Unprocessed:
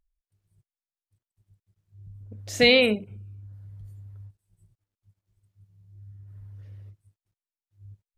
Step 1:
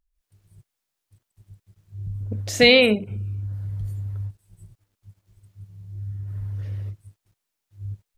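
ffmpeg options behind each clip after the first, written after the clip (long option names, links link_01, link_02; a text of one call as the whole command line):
ffmpeg -i in.wav -af "dynaudnorm=framelen=120:gausssize=3:maxgain=15dB,volume=-1dB" out.wav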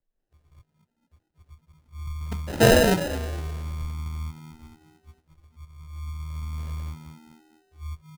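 ffmpeg -i in.wav -filter_complex "[0:a]afreqshift=-24,asplit=5[link_01][link_02][link_03][link_04][link_05];[link_02]adelay=222,afreqshift=79,volume=-13dB[link_06];[link_03]adelay=444,afreqshift=158,volume=-20.7dB[link_07];[link_04]adelay=666,afreqshift=237,volume=-28.5dB[link_08];[link_05]adelay=888,afreqshift=316,volume=-36.2dB[link_09];[link_01][link_06][link_07][link_08][link_09]amix=inputs=5:normalize=0,acrusher=samples=39:mix=1:aa=0.000001,volume=-2dB" out.wav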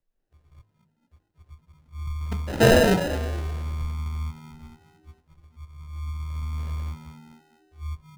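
ffmpeg -i in.wav -filter_complex "[0:a]highshelf=frequency=5000:gain=-6,bandreject=frequency=52.23:width_type=h:width=4,bandreject=frequency=104.46:width_type=h:width=4,bandreject=frequency=156.69:width_type=h:width=4,bandreject=frequency=208.92:width_type=h:width=4,bandreject=frequency=261.15:width_type=h:width=4,bandreject=frequency=313.38:width_type=h:width=4,bandreject=frequency=365.61:width_type=h:width=4,bandreject=frequency=417.84:width_type=h:width=4,bandreject=frequency=470.07:width_type=h:width=4,bandreject=frequency=522.3:width_type=h:width=4,bandreject=frequency=574.53:width_type=h:width=4,bandreject=frequency=626.76:width_type=h:width=4,bandreject=frequency=678.99:width_type=h:width=4,bandreject=frequency=731.22:width_type=h:width=4,bandreject=frequency=783.45:width_type=h:width=4,bandreject=frequency=835.68:width_type=h:width=4,bandreject=frequency=887.91:width_type=h:width=4,bandreject=frequency=940.14:width_type=h:width=4,bandreject=frequency=992.37:width_type=h:width=4,bandreject=frequency=1044.6:width_type=h:width=4,asplit=2[link_01][link_02];[link_02]asoftclip=type=hard:threshold=-22.5dB,volume=-9.5dB[link_03];[link_01][link_03]amix=inputs=2:normalize=0" out.wav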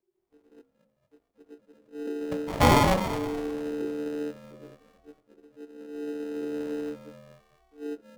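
ffmpeg -i in.wav -af "aeval=exprs='val(0)*sin(2*PI*370*n/s)':channel_layout=same" out.wav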